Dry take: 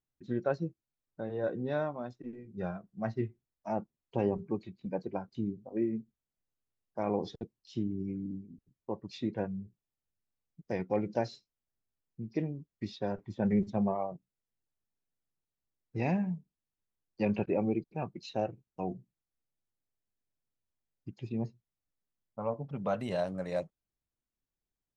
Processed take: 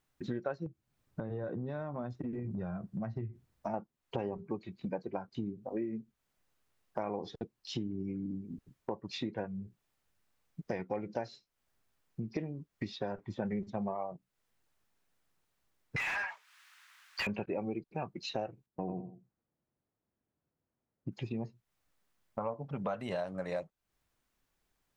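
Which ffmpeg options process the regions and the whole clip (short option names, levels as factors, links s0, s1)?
-filter_complex "[0:a]asettb=1/sr,asplit=3[s0][s1][s2];[s0]atrim=end=0.664[s3];[s1]atrim=start=0.66:end=3.74,asetpts=PTS-STARTPTS,afade=t=in:d=0.004:c=qsin,afade=t=out:st=3.076:d=0.004:c=qsin,equalizer=f=100:w=0.39:g=14.5,acompressor=threshold=0.0141:ratio=5:attack=3.2:release=140:knee=1:detection=peak[s4];[s2]atrim=start=3.736[s5];[s3][s4]acrossfade=d=0.004:c1=hsin:c2=qsin[s6];[s6][s5]acrossfade=d=0.004:c1=qsin:c2=hsin,asettb=1/sr,asplit=3[s7][s8][s9];[s7]atrim=end=15.964[s10];[s8]atrim=start=15.96:end=17.27,asetpts=PTS-STARTPTS,afade=t=in:d=0.004:c=qsin,afade=t=out:st=1.306:d=0.004:c=qsin,highpass=f=1300:w=0.5412,highpass=f=1300:w=1.3066,asplit=2[s11][s12];[s12]highpass=f=720:p=1,volume=70.8,asoftclip=type=tanh:threshold=0.0631[s13];[s11][s13]amix=inputs=2:normalize=0,lowpass=f=1700:p=1,volume=0.501[s14];[s9]atrim=start=17.266[s15];[s10][s14]acrossfade=d=0.004:c1=hsin:c2=qsin[s16];[s16][s15]acrossfade=d=0.004:c1=qsin:c2=hsin,asettb=1/sr,asplit=3[s17][s18][s19];[s17]atrim=end=18.664[s20];[s18]atrim=start=18.66:end=21.12,asetpts=PTS-STARTPTS,afade=t=in:d=0.004:c=qsin,afade=t=out:st=2.456:d=0.004:c=qsin,bandpass=f=200:t=q:w=0.6,aecho=1:1:87|174|261:0.668|0.147|0.0323,atrim=end_sample=108486[s21];[s19]atrim=start=21.116[s22];[s20][s21]acrossfade=d=0.004:c1=hsin:c2=qsin[s23];[s23][s22]acrossfade=d=0.004:c1=qsin:c2=hsin,equalizer=f=1300:w=0.47:g=6.5,acompressor=threshold=0.00447:ratio=4,volume=3.16"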